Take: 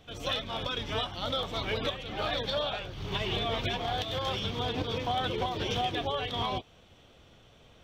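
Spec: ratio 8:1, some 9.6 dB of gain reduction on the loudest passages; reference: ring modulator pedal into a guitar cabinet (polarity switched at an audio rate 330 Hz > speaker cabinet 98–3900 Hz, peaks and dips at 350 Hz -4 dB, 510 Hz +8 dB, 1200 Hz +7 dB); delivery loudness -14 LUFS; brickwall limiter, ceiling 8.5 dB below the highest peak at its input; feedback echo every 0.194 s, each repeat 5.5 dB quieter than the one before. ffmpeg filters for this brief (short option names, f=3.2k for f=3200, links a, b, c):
-af "acompressor=threshold=-37dB:ratio=8,alimiter=level_in=11dB:limit=-24dB:level=0:latency=1,volume=-11dB,aecho=1:1:194|388|582|776|970|1164|1358:0.531|0.281|0.149|0.079|0.0419|0.0222|0.0118,aeval=exprs='val(0)*sgn(sin(2*PI*330*n/s))':c=same,highpass=98,equalizer=f=350:t=q:w=4:g=-4,equalizer=f=510:t=q:w=4:g=8,equalizer=f=1.2k:t=q:w=4:g=7,lowpass=f=3.9k:w=0.5412,lowpass=f=3.9k:w=1.3066,volume=27dB"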